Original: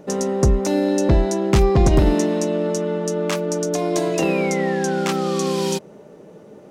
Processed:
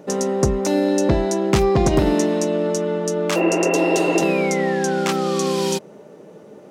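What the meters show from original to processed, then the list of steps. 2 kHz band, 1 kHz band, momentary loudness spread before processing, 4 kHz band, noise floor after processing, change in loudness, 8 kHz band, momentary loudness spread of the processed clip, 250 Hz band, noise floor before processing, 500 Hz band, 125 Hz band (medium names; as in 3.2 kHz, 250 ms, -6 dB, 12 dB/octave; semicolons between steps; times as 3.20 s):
+3.5 dB, +2.0 dB, 7 LU, +2.0 dB, -44 dBFS, +0.5 dB, +1.5 dB, 5 LU, +1.0 dB, -44 dBFS, +1.5 dB, -3.0 dB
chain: spectral replace 3.39–4.18 s, 260–2800 Hz after; high-pass 150 Hz 6 dB/octave; trim +1.5 dB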